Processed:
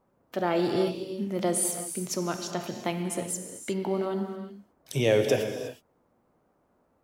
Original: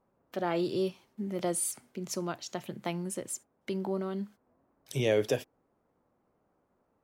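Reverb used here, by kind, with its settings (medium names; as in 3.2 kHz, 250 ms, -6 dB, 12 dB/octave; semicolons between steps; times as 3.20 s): gated-style reverb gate 390 ms flat, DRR 5 dB; trim +4 dB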